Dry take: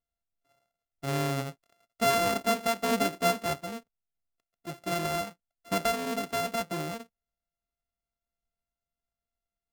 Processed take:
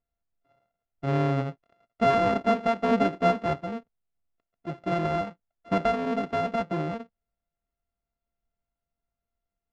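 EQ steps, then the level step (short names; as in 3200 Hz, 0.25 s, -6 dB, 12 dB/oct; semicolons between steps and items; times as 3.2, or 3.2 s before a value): tape spacing loss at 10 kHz 34 dB; +6.5 dB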